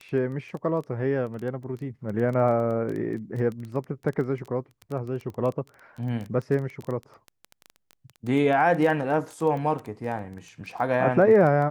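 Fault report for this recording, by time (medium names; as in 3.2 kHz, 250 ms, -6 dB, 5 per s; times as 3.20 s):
crackle 13 per s -30 dBFS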